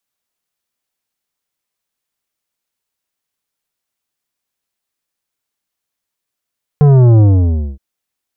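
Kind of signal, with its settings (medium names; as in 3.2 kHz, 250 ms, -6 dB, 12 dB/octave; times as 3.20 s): sub drop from 150 Hz, over 0.97 s, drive 11 dB, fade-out 0.58 s, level -5.5 dB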